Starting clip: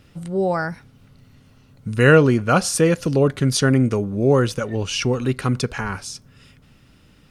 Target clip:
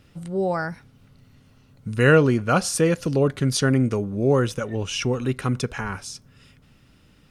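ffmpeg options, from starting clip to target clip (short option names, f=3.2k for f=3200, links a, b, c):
-filter_complex "[0:a]asettb=1/sr,asplit=3[a][b][c];[a]atrim=end=4.364[d];[b]atrim=start=4.36:end=6.04,asetpts=PTS-STARTPTS,afade=t=in:d=0.004:c=qsin,afade=t=out:st=1.676:d=0.004:c=qsin,bandreject=f=4.5k:w=7.3[e];[c]atrim=start=6.036[f];[d][e]acrossfade=d=0.004:c1=hsin:c2=qsin[g];[g][f]acrossfade=d=0.004:c1=qsin:c2=hsin,volume=-3dB"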